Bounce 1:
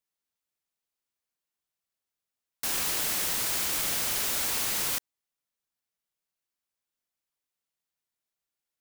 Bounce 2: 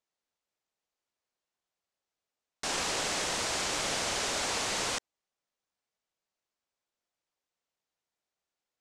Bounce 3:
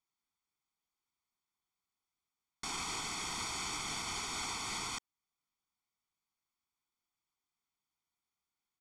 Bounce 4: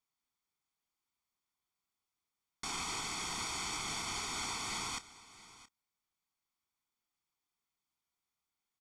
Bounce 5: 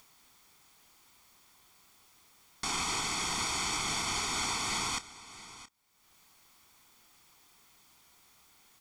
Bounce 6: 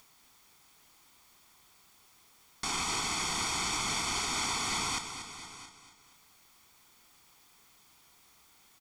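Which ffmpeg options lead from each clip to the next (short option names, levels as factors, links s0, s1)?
-af "lowpass=f=7800:w=0.5412,lowpass=f=7800:w=1.3066,equalizer=f=610:w=0.74:g=6.5"
-af "aecho=1:1:0.9:0.97,alimiter=limit=0.0668:level=0:latency=1:release=320,volume=0.531"
-filter_complex "[0:a]asplit=2[s0][s1];[s1]adelay=29,volume=0.211[s2];[s0][s2]amix=inputs=2:normalize=0,aecho=1:1:672:0.126"
-af "acompressor=mode=upward:threshold=0.00316:ratio=2.5,volume=2"
-af "aecho=1:1:236|472|708|944|1180:0.316|0.158|0.0791|0.0395|0.0198"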